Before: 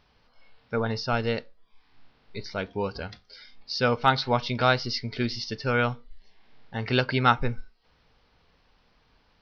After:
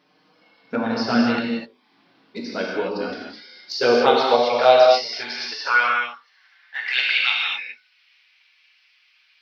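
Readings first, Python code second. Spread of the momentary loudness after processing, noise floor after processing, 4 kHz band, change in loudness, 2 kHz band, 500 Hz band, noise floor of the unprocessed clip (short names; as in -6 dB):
16 LU, -61 dBFS, +7.5 dB, +7.0 dB, +8.0 dB, +10.0 dB, -65 dBFS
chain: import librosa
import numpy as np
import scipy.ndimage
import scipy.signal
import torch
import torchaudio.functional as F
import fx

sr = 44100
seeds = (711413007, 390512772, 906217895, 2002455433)

y = fx.hum_notches(x, sr, base_hz=50, count=9)
y = fx.env_flanger(y, sr, rest_ms=6.6, full_db=-18.5)
y = fx.rev_gated(y, sr, seeds[0], gate_ms=280, shape='flat', drr_db=-2.5)
y = fx.filter_sweep_highpass(y, sr, from_hz=250.0, to_hz=2400.0, start_s=3.26, end_s=7.26, q=3.4)
y = y * librosa.db_to_amplitude(4.0)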